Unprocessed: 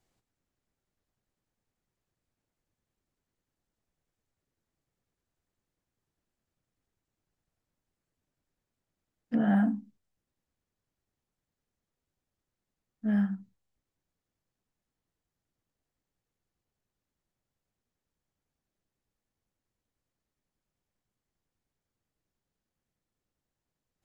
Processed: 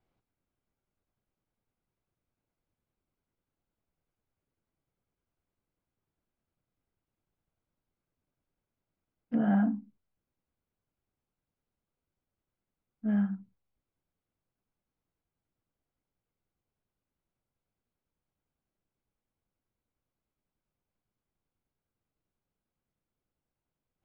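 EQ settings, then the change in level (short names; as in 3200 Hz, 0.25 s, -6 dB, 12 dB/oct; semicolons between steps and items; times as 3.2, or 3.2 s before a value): LPF 2600 Hz 12 dB/oct; notch 1800 Hz, Q 8.2; -1.0 dB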